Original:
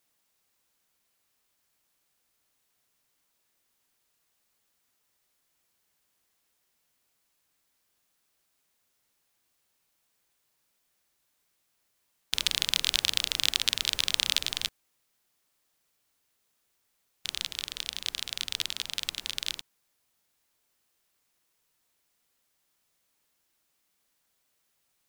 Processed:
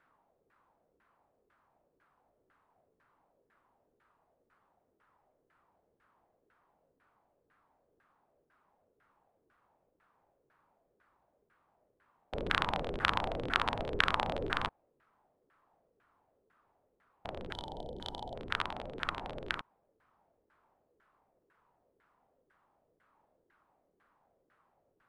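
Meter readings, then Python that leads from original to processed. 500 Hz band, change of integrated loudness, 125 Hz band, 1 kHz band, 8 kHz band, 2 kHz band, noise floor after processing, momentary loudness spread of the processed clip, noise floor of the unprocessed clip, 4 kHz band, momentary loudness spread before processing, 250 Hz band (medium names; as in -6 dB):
+13.5 dB, -7.0 dB, +8.5 dB, +12.5 dB, -25.5 dB, +0.5 dB, -78 dBFS, 13 LU, -75 dBFS, -13.5 dB, 9 LU, +9.5 dB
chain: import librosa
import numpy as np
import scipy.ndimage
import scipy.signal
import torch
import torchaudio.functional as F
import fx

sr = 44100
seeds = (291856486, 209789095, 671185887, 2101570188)

y = fx.high_shelf_res(x, sr, hz=7800.0, db=7.5, q=1.5)
y = fx.spec_box(y, sr, start_s=17.53, length_s=0.82, low_hz=970.0, high_hz=3000.0, gain_db=-21)
y = fx.filter_lfo_lowpass(y, sr, shape='saw_down', hz=2.0, low_hz=390.0, high_hz=1600.0, q=3.4)
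y = y * 10.0 ** (8.0 / 20.0)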